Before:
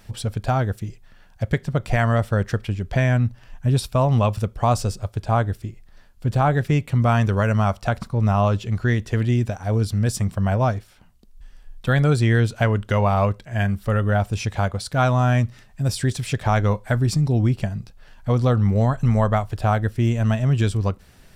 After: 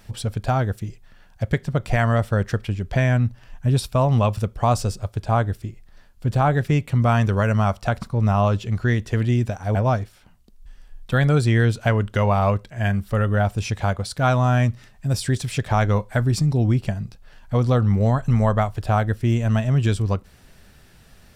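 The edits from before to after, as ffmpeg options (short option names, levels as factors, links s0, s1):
-filter_complex "[0:a]asplit=2[s0][s1];[s0]atrim=end=9.752[s2];[s1]atrim=start=10.498[s3];[s2][s3]acrossfade=d=0.004:c1=hsin:c2=hsin"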